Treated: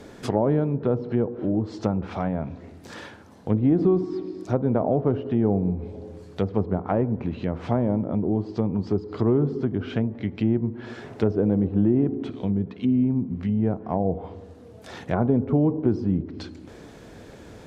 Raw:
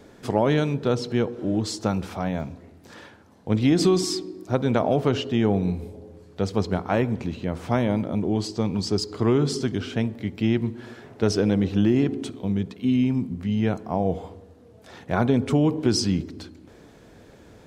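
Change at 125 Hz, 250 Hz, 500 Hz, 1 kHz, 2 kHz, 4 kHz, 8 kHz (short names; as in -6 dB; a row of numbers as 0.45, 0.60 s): 0.0 dB, 0.0 dB, -0.5 dB, -2.5 dB, -7.0 dB, under -10 dB, under -15 dB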